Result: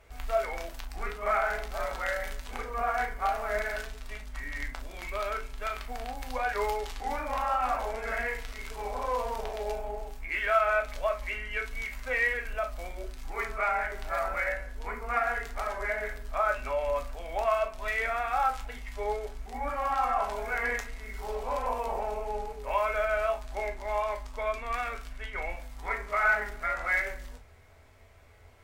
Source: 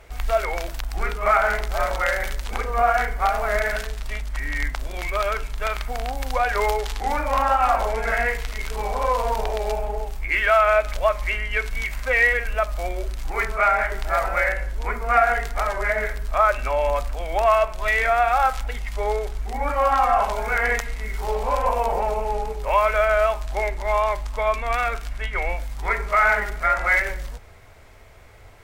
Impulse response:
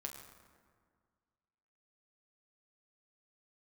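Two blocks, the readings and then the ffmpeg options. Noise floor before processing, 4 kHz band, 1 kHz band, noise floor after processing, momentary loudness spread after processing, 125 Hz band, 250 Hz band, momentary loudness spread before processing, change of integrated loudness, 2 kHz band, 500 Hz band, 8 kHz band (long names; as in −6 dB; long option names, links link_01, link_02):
−35 dBFS, −9.5 dB, −9.0 dB, −46 dBFS, 11 LU, −13.0 dB, −8.0 dB, 11 LU, −9.0 dB, −8.5 dB, −9.0 dB, −9.5 dB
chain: -filter_complex "[1:a]atrim=start_sample=2205,atrim=end_sample=3969,asetrate=52920,aresample=44100[link_01];[0:a][link_01]afir=irnorm=-1:irlink=0,volume=-4dB"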